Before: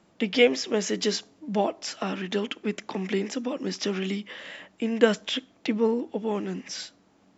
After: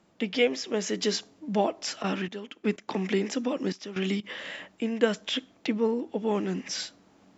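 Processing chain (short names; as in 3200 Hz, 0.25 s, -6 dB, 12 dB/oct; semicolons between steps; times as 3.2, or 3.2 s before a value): vocal rider within 4 dB 0.5 s; 2.01–4.23 step gate ".xx...x.xxxxxxx." 125 bpm -12 dB; gain -1.5 dB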